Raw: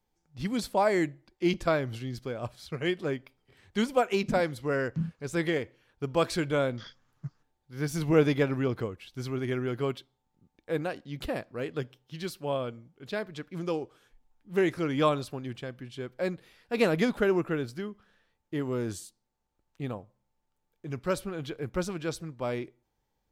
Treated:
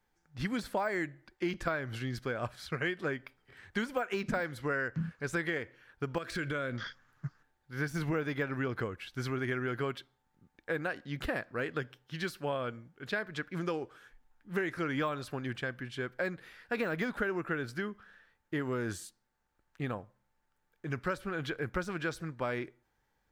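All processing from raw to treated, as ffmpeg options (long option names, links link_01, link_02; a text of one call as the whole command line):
ffmpeg -i in.wav -filter_complex "[0:a]asettb=1/sr,asplit=3[link_01][link_02][link_03];[link_01]atrim=end=6.184[link_04];[link_02]atrim=start=6.18:end=6.75,asetpts=PTS-STARTPTS,afade=type=in:duration=0.004:curve=qsin,afade=type=out:start_time=0.566:duration=0.004:curve=qsin,equalizer=frequency=850:width_type=o:width=0.44:gain=-11.5,acompressor=threshold=-31dB:ratio=10:attack=3.2:release=140:knee=1:detection=peak[link_05];[link_03]atrim=start=6.746[link_06];[link_04][link_05]acrossfade=duration=0.004:curve1=hsin:curve2=qsin[link_07];[link_07][link_06]acrossfade=duration=0.004:curve1=qsin:curve2=hsin,deesser=0.95,equalizer=frequency=1600:width_type=o:width=0.89:gain=11.5,acompressor=threshold=-30dB:ratio=6" out.wav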